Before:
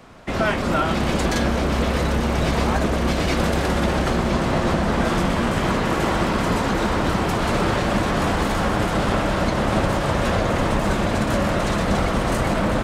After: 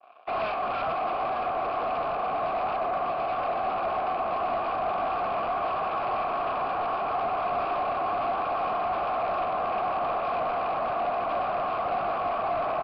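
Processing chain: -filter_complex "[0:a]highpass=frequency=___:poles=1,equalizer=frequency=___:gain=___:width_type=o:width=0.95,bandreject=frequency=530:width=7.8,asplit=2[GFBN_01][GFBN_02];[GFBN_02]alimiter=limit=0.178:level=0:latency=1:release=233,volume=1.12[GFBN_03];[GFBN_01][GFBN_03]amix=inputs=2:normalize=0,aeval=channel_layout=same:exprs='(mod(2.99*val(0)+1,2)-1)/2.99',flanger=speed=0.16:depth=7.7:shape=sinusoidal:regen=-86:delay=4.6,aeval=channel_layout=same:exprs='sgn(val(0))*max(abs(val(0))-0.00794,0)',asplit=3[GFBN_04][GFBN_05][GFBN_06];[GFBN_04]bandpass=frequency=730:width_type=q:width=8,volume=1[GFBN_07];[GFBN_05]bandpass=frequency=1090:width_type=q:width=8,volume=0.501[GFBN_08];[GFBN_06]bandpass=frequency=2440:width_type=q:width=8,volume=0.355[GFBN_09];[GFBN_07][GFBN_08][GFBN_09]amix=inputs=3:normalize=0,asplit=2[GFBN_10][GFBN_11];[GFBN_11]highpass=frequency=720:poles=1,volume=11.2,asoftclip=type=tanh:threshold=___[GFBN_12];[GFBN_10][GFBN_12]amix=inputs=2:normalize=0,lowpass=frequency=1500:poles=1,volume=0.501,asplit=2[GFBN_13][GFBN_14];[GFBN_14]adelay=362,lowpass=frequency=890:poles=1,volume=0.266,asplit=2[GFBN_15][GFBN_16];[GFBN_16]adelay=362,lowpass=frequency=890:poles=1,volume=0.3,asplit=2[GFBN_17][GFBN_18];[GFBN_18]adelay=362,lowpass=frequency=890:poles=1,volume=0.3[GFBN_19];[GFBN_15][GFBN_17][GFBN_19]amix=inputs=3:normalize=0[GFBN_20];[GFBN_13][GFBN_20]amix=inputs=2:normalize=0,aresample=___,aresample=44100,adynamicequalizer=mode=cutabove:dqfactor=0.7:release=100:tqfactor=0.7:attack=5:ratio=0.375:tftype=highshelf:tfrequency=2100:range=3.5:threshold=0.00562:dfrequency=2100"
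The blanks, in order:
220, 1300, 3, 0.106, 11025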